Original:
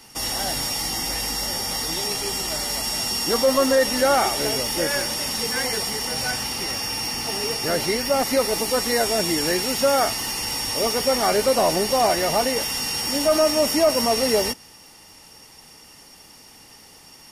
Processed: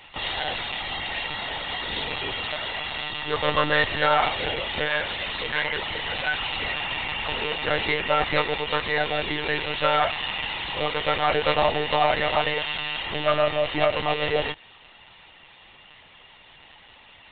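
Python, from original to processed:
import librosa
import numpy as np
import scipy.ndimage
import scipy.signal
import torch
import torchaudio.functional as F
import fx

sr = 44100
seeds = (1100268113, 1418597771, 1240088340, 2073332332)

y = fx.tilt_eq(x, sr, slope=3.5)
y = fx.rider(y, sr, range_db=10, speed_s=0.5)
y = fx.lpc_monotone(y, sr, seeds[0], pitch_hz=150.0, order=16)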